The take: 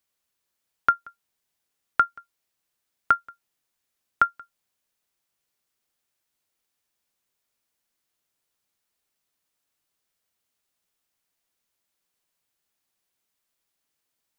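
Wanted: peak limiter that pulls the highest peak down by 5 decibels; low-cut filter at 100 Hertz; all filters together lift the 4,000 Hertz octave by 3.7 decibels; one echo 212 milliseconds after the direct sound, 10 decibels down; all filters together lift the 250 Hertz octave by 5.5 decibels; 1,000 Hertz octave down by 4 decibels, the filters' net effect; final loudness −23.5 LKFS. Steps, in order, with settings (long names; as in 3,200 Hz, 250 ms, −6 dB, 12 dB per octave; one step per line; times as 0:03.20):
high-pass filter 100 Hz
parametric band 250 Hz +7.5 dB
parametric band 1,000 Hz −8.5 dB
parametric band 4,000 Hz +5.5 dB
brickwall limiter −13 dBFS
single-tap delay 212 ms −10 dB
level +11 dB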